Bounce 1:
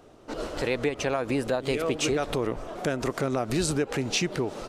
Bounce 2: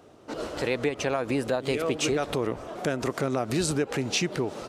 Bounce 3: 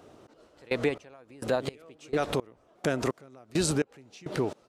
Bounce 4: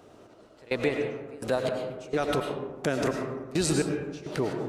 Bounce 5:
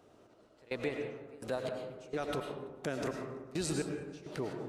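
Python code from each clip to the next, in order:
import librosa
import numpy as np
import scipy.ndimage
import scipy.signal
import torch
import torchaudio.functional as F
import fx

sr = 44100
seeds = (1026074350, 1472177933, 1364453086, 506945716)

y1 = scipy.signal.sosfilt(scipy.signal.butter(2, 63.0, 'highpass', fs=sr, output='sos'), x)
y2 = fx.step_gate(y1, sr, bpm=169, pattern='xxx.....', floor_db=-24.0, edge_ms=4.5)
y3 = fx.rev_freeverb(y2, sr, rt60_s=1.2, hf_ratio=0.4, predelay_ms=65, drr_db=2.5)
y4 = fx.echo_feedback(y3, sr, ms=167, feedback_pct=43, wet_db=-23.5)
y4 = F.gain(torch.from_numpy(y4), -9.0).numpy()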